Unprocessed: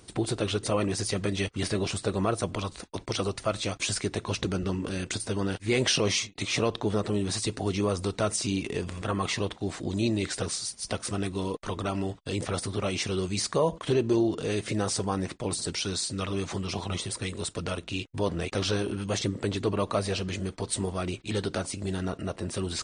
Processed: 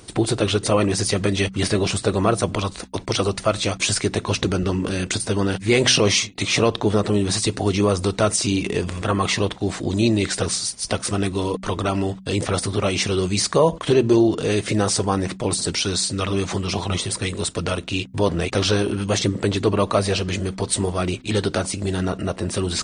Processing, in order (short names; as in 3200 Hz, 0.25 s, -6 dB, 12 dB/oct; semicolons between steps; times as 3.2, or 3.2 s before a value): de-hum 63.61 Hz, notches 4; gain +8.5 dB